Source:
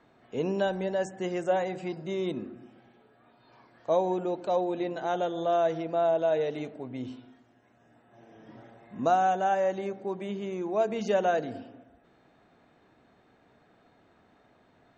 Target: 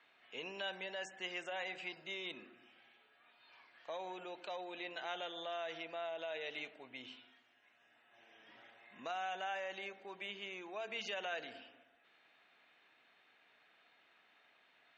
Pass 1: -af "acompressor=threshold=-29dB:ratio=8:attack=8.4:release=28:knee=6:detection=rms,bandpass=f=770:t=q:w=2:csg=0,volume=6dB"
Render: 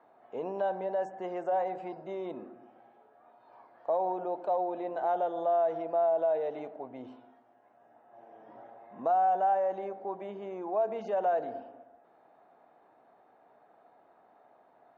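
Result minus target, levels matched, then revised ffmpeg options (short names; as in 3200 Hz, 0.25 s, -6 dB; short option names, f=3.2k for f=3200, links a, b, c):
2000 Hz band -18.0 dB
-af "acompressor=threshold=-29dB:ratio=8:attack=8.4:release=28:knee=6:detection=rms,bandpass=f=2.7k:t=q:w=2:csg=0,volume=6dB"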